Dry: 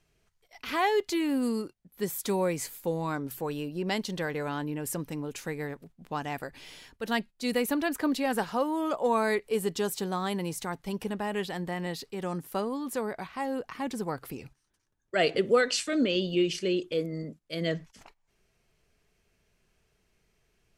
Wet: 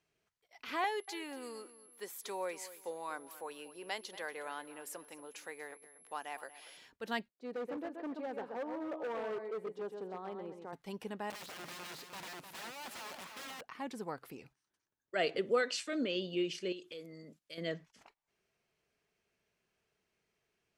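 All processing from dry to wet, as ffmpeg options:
-filter_complex "[0:a]asettb=1/sr,asplit=3[s0][s1][s2];[s0]atrim=end=0.844[s3];[s1]atrim=start=0.84:end=6.77,asetpts=PTS-STARTPTS,afade=t=in:d=0.004:c=qsin,afade=t=out:st=5.926:d=0.004:c=qsin,aeval=exprs='val(0)+0.00398*sin(2*PI*11000*n/s)':c=same,highpass=520,asplit=2[s4][s5];[s5]adelay=236,lowpass=f=4900:p=1,volume=0.168,asplit=2[s6][s7];[s7]adelay=236,lowpass=f=4900:p=1,volume=0.3,asplit=2[s8][s9];[s9]adelay=236,lowpass=f=4900:p=1,volume=0.3[s10];[s4][s6][s8][s10]amix=inputs=4:normalize=0,atrim=end_sample=261513[s11];[s2]atrim=start=6.766[s12];[s3][s11]acrossfade=d=0.004:c1=hsin:c2=qsin[s13];[s13][s12]acrossfade=d=0.004:c1=qsin:c2=hsin,asettb=1/sr,asplit=3[s14][s15][s16];[s14]atrim=end=7.284[s17];[s15]atrim=start=7.28:end=10.73,asetpts=PTS-STARTPTS,afade=t=in:d=0.004:c=qsin,afade=t=out:st=3.446:d=0.004:c=qsin,bandpass=f=470:t=q:w=1.1,aecho=1:1:129|258|387:0.447|0.121|0.0326,atrim=end_sample=152145,asoftclip=type=hard:threshold=0.0398[s18];[s16]atrim=start=10.726[s19];[s17][s18]acrossfade=d=0.004:c1=hsin:c2=qsin[s20];[s20][s19]acrossfade=d=0.004:c1=qsin:c2=hsin,asettb=1/sr,asplit=3[s21][s22][s23];[s21]atrim=end=11.304[s24];[s22]atrim=start=11.3:end=13.61,asetpts=PTS-STARTPTS,afade=t=in:d=0.004:c=qsin,afade=t=out:st=2.306:d=0.004:c=qsin,equalizer=f=63:t=o:w=2.1:g=-5,aeval=exprs='(mod(47.3*val(0)+1,2)-1)/47.3':c=same,aecho=1:1:304|608|912:0.447|0.121|0.0326,atrim=end_sample=101871[s25];[s23]atrim=start=13.606[s26];[s24][s25]acrossfade=d=0.004:c1=hsin:c2=qsin[s27];[s27][s26]acrossfade=d=0.004:c1=qsin:c2=hsin,asettb=1/sr,asplit=3[s28][s29][s30];[s28]atrim=end=16.724[s31];[s29]atrim=start=16.72:end=17.58,asetpts=PTS-STARTPTS,afade=t=in:d=0.004:c=qsin,afade=t=out:st=0.856:d=0.004:c=qsin,highshelf=f=2200:g=11,acompressor=threshold=0.01:ratio=2.5:attack=3.2:release=140:knee=1:detection=peak[s32];[s30]atrim=start=17.576[s33];[s31][s32]acrossfade=d=0.004:c1=hsin:c2=qsin[s34];[s34][s33]acrossfade=d=0.004:c1=qsin:c2=hsin,highpass=f=280:p=1,highshelf=f=6400:g=-7,volume=0.473"

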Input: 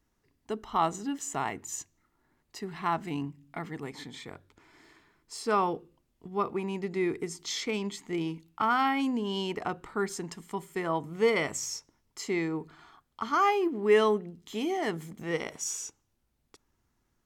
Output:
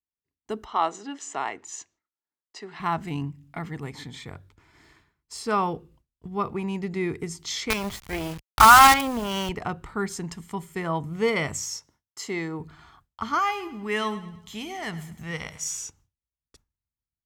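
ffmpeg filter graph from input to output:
-filter_complex "[0:a]asettb=1/sr,asplit=3[s0][s1][s2];[s0]atrim=end=0.654[s3];[s1]atrim=start=0.65:end=2.8,asetpts=PTS-STARTPTS,afade=t=in:d=0.004:c=qsin,afade=t=out:st=2.146:d=0.004:c=qsin,lowpass=12000,acrossover=split=280 7600:gain=0.0794 1 0.0708[s4][s5][s6];[s4][s5][s6]amix=inputs=3:normalize=0[s7];[s2]atrim=start=2.796[s8];[s3][s7]acrossfade=d=0.004:c1=hsin:c2=qsin[s9];[s9][s8]acrossfade=d=0.004:c1=qsin:c2=hsin,asettb=1/sr,asplit=3[s10][s11][s12];[s10]atrim=end=7.704[s13];[s11]atrim=start=7.7:end=9.49,asetpts=PTS-STARTPTS,afade=t=in:d=0.004:c=qsin,afade=t=out:st=1.786:d=0.004:c=qsin,equalizer=f=1200:w=0.49:g=13,acrusher=bits=4:dc=4:mix=0:aa=0.000001[s14];[s12]atrim=start=9.486[s15];[s13][s14]acrossfade=d=0.004:c1=hsin:c2=qsin[s16];[s16][s15]acrossfade=d=0.004:c1=qsin:c2=hsin,asettb=1/sr,asplit=3[s17][s18][s19];[s17]atrim=end=11.624[s20];[s18]atrim=start=11.62:end=12.6,asetpts=PTS-STARTPTS,afade=t=in:d=0.004:c=qsin,afade=t=out:st=0.976:d=0.004:c=qsin,highpass=74,bass=f=250:g=-7,treble=f=4000:g=0,bandreject=f=2400:w=12[s21];[s19]atrim=start=12.596[s22];[s20][s21]acrossfade=d=0.004:c1=hsin:c2=qsin[s23];[s23][s22]acrossfade=d=0.004:c1=qsin:c2=hsin,asettb=1/sr,asplit=3[s24][s25][s26];[s24]atrim=end=13.394[s27];[s25]atrim=start=13.39:end=15.79,asetpts=PTS-STARTPTS,afade=t=in:d=0.004:c=qsin,afade=t=out:st=2.396:d=0.004:c=qsin,equalizer=f=380:t=o:w=1.8:g=-9.5,aecho=1:1:105|210|315|420:0.178|0.0747|0.0314|0.0132,atrim=end_sample=105840[s28];[s26]atrim=start=15.786[s29];[s27][s28]acrossfade=d=0.004:c1=hsin:c2=qsin[s30];[s30][s29]acrossfade=d=0.004:c1=qsin:c2=hsin,agate=range=0.0224:threshold=0.00158:ratio=3:detection=peak,highpass=40,asubboost=boost=4.5:cutoff=140,volume=1.41"

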